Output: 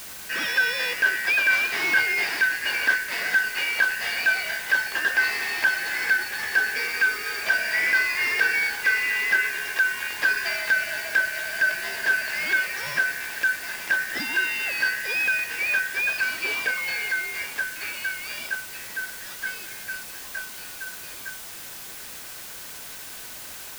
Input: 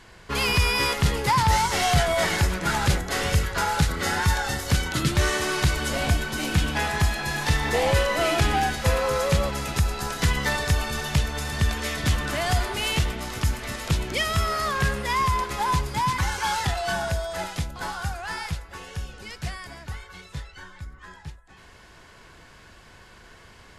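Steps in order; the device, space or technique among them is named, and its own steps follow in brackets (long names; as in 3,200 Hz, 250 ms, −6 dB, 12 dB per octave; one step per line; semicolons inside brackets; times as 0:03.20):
split-band scrambled radio (band-splitting scrambler in four parts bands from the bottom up 3142; band-pass filter 320–3,100 Hz; white noise bed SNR 13 dB)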